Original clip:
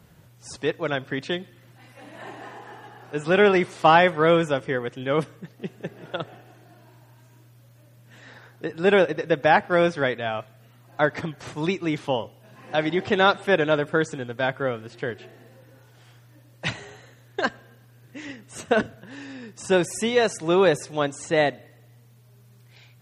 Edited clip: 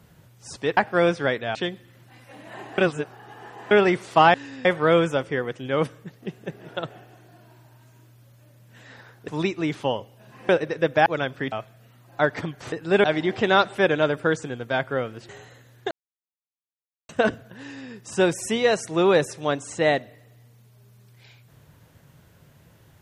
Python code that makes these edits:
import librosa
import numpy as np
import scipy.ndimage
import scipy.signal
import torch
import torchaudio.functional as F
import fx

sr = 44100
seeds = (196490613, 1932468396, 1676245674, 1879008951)

y = fx.edit(x, sr, fx.swap(start_s=0.77, length_s=0.46, other_s=9.54, other_length_s=0.78),
    fx.reverse_span(start_s=2.46, length_s=0.93),
    fx.swap(start_s=8.65, length_s=0.32, other_s=11.52, other_length_s=1.21),
    fx.cut(start_s=14.98, length_s=1.83),
    fx.silence(start_s=17.43, length_s=1.18),
    fx.duplicate(start_s=19.11, length_s=0.31, to_s=4.02), tone=tone)